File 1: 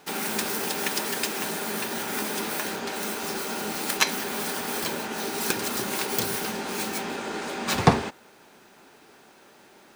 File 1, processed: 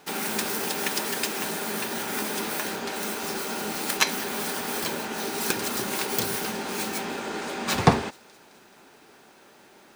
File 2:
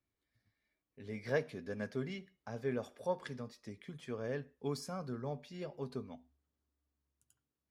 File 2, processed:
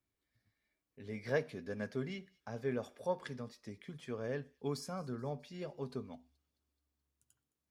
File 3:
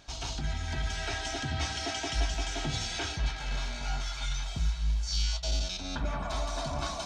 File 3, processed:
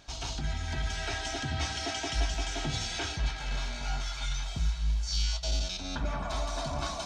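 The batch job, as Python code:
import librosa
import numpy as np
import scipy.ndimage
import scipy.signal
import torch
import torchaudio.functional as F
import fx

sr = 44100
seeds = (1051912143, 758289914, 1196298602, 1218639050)

y = fx.echo_wet_highpass(x, sr, ms=214, feedback_pct=58, hz=4000.0, wet_db=-21.0)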